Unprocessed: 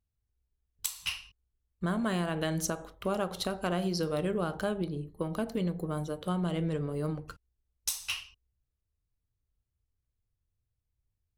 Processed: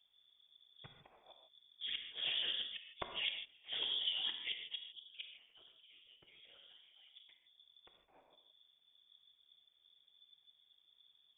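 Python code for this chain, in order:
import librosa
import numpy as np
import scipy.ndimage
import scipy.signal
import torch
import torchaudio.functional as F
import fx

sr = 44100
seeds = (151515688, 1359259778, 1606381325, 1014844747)

y = fx.highpass(x, sr, hz=910.0, slope=6, at=(4.99, 7.1))
y = y + 0.7 * np.pad(y, (int(6.3 * sr / 1000.0), 0))[:len(y)]
y = fx.over_compress(y, sr, threshold_db=-38.0, ratio=-1.0)
y = fx.gate_flip(y, sr, shuts_db=-30.0, range_db=-33)
y = fx.whisperise(y, sr, seeds[0])
y = fx.rev_gated(y, sr, seeds[1], gate_ms=180, shape='flat', drr_db=4.5)
y = fx.freq_invert(y, sr, carrier_hz=3500)
y = y * librosa.db_to_amplitude(2.5)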